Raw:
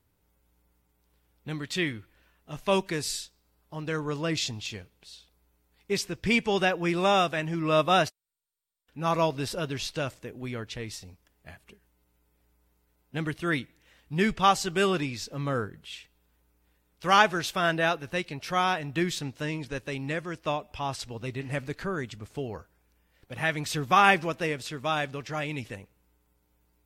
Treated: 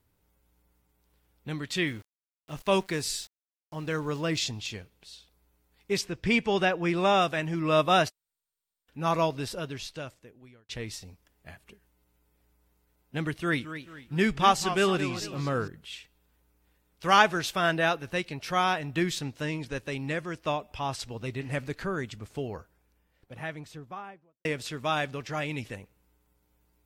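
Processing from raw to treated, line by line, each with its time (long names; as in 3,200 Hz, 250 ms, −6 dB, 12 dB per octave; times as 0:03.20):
0:01.84–0:04.44: centre clipping without the shift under −48.5 dBFS
0:06.01–0:07.22: high-shelf EQ 6,400 Hz −8 dB
0:09.08–0:10.69: fade out
0:13.31–0:15.68: feedback echo with a swinging delay time 221 ms, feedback 39%, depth 169 cents, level −11.5 dB
0:22.42–0:24.45: fade out and dull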